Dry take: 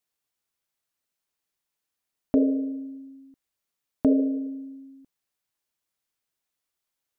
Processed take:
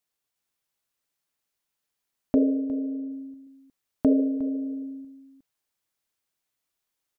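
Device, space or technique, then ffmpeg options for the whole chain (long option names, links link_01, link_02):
ducked delay: -filter_complex "[0:a]asettb=1/sr,asplit=3[link_01][link_02][link_03];[link_01]atrim=end=2.354[link_04];[link_02]atrim=start=2.35:end=3.11,asetpts=PTS-STARTPTS,afade=type=in:duration=0.004:curve=qsin,afade=type=out:start_time=0.756:duration=0.004:curve=qsin,lowpass=1000[link_05];[link_03]atrim=start=3.106[link_06];[link_04][link_05]acrossfade=duration=0.004:curve1=hsin:curve2=qsin[link_07];[link_07][link_06]acrossfade=duration=0.004:curve1=qsin:curve2=hsin,asplit=3[link_08][link_09][link_10];[link_09]adelay=359,volume=-4dB[link_11];[link_10]apad=whole_len=332799[link_12];[link_11][link_12]sidechaincompress=threshold=-41dB:ratio=8:attack=7.2:release=163[link_13];[link_08][link_13]amix=inputs=2:normalize=0"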